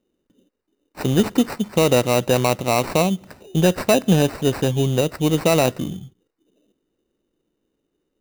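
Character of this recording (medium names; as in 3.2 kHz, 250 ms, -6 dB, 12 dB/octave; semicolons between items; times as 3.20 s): aliases and images of a low sample rate 3.3 kHz, jitter 0%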